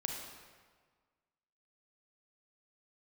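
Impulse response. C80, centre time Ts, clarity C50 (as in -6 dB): 4.5 dB, 62 ms, 2.0 dB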